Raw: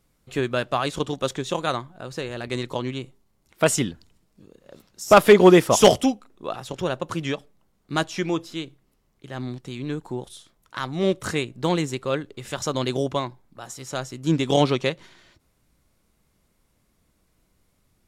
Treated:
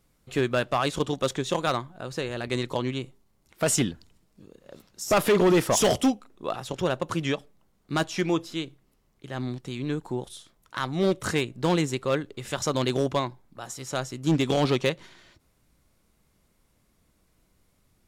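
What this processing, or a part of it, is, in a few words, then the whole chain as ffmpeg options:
limiter into clipper: -af "alimiter=limit=0.299:level=0:latency=1:release=24,asoftclip=type=hard:threshold=0.158"

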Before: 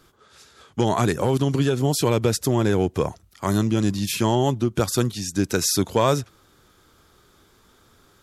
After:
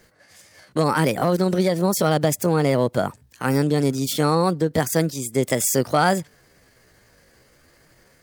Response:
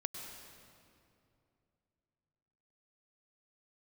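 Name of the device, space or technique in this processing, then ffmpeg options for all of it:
chipmunk voice: -af "asetrate=58866,aresample=44100,atempo=0.749154,volume=1.12"

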